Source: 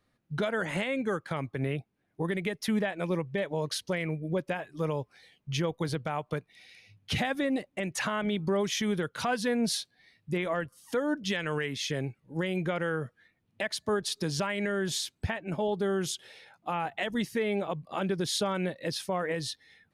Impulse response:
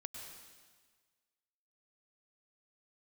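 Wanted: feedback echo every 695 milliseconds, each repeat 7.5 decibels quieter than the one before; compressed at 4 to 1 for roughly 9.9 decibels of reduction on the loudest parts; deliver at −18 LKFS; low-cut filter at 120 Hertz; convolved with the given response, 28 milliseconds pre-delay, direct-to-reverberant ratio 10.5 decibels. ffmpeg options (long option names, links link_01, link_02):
-filter_complex "[0:a]highpass=120,acompressor=threshold=-37dB:ratio=4,aecho=1:1:695|1390|2085|2780|3475:0.422|0.177|0.0744|0.0312|0.0131,asplit=2[link_01][link_02];[1:a]atrim=start_sample=2205,adelay=28[link_03];[link_02][link_03]afir=irnorm=-1:irlink=0,volume=-7.5dB[link_04];[link_01][link_04]amix=inputs=2:normalize=0,volume=21.5dB"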